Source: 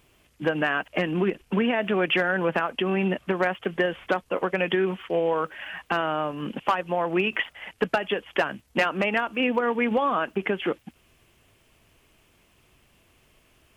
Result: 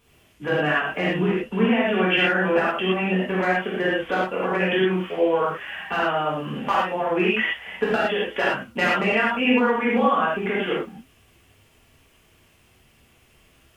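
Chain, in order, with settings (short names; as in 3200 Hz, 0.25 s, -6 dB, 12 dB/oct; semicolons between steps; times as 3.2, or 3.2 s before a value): flange 1.9 Hz, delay 8.3 ms, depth 3.1 ms, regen -83%; non-linear reverb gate 0.14 s flat, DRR -7.5 dB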